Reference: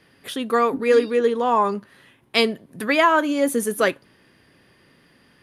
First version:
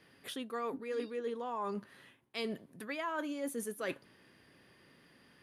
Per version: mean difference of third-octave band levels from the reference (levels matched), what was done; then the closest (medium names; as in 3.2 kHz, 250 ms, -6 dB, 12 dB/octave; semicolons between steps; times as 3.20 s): 3.5 dB: bass shelf 80 Hz -6 dB; reverse; compression 5:1, threshold -30 dBFS, peak gain reduction 16.5 dB; reverse; trim -6.5 dB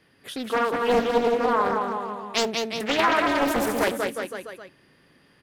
10.0 dB: on a send: bouncing-ball echo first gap 190 ms, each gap 0.9×, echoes 5; on the sum: loudspeaker Doppler distortion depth 0.6 ms; trim -4.5 dB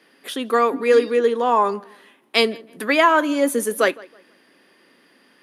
2.0 dB: high-pass 230 Hz 24 dB/octave; filtered feedback delay 161 ms, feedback 29%, low-pass 3.2 kHz, level -22.5 dB; trim +1.5 dB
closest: third